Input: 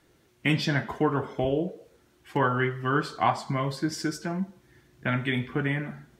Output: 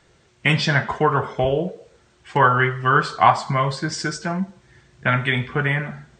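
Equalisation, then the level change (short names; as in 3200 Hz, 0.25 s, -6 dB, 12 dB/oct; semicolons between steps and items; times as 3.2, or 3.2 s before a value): dynamic EQ 1200 Hz, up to +4 dB, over -39 dBFS, Q 1.2; brick-wall FIR low-pass 8800 Hz; bell 290 Hz -10.5 dB 0.56 oct; +7.5 dB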